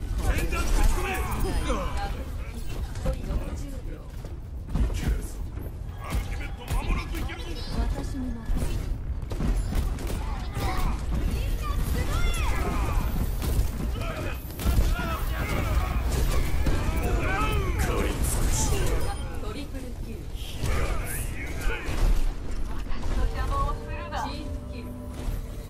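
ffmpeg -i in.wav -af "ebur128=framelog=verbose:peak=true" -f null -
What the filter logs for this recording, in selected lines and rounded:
Integrated loudness:
  I:         -30.3 LUFS
  Threshold: -40.3 LUFS
Loudness range:
  LRA:         5.6 LU
  Threshold: -50.3 LUFS
  LRA low:   -33.1 LUFS
  LRA high:  -27.5 LUFS
True peak:
  Peak:      -11.7 dBFS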